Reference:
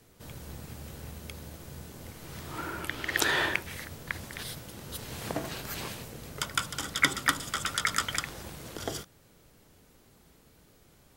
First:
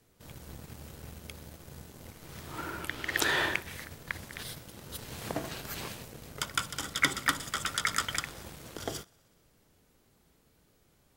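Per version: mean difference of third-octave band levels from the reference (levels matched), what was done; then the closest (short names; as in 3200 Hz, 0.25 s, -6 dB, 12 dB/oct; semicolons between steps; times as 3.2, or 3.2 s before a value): 1.5 dB: thinning echo 62 ms, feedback 79%, high-pass 350 Hz, level -23 dB; sample leveller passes 1; gain -5 dB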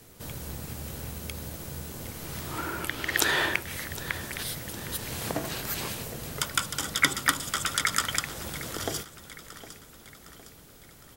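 3.0 dB: high shelf 7400 Hz +6 dB; in parallel at 0 dB: compressor, threshold -41 dBFS, peak gain reduction 22.5 dB; on the sum: feedback echo 0.76 s, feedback 50%, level -15.5 dB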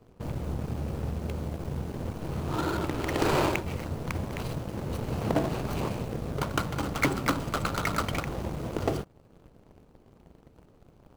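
6.5 dB: median filter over 25 samples; sample leveller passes 2; in parallel at -1 dB: compressor, threshold -41 dBFS, peak gain reduction 17 dB; on the sum: gain +1.5 dB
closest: first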